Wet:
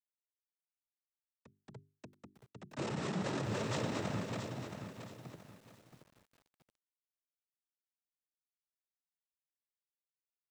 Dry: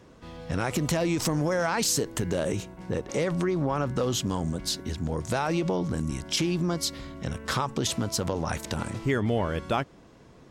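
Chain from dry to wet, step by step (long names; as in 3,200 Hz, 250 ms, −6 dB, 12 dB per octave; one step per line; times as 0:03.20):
source passing by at 0:03.41, 43 m/s, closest 12 metres
high-shelf EQ 3,200 Hz −2 dB
echo machine with several playback heads 140 ms, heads second and third, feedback 50%, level −19.5 dB
reverb whose tail is shaped and stops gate 500 ms flat, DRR 2.5 dB
comparator with hysteresis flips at −31.5 dBFS
cochlear-implant simulation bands 12
mains-hum notches 50/100/150/200/250/300/350/400 Hz
feedback echo at a low word length 674 ms, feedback 35%, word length 10 bits, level −7.5 dB
level +1 dB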